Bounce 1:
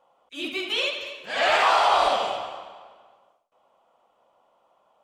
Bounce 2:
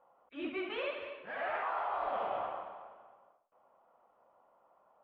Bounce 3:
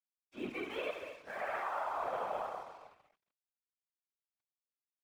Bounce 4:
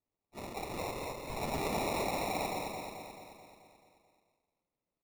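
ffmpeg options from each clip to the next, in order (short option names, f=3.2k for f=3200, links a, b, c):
-af "lowpass=f=1.8k:w=0.5412,lowpass=f=1.8k:w=1.3066,aemphasis=mode=production:type=75fm,areverse,acompressor=threshold=-29dB:ratio=16,areverse,volume=-3dB"
-af "aeval=exprs='sgn(val(0))*max(abs(val(0))-0.0015,0)':c=same,afftfilt=real='hypot(re,im)*cos(2*PI*random(0))':imag='hypot(re,im)*sin(2*PI*random(1))':win_size=512:overlap=0.75,bandreject=f=2.9k:w=15,volume=5dB"
-filter_complex "[0:a]acrossover=split=160|610|3400[a][b][c][d];[b]aeval=exprs='(mod(158*val(0)+1,2)-1)/158':c=same[e];[a][e][c][d]amix=inputs=4:normalize=0,acrusher=samples=28:mix=1:aa=0.000001,aecho=1:1:217|434|651|868|1085|1302|1519|1736:0.562|0.326|0.189|0.11|0.0636|0.0369|0.0214|0.0124,volume=3.5dB"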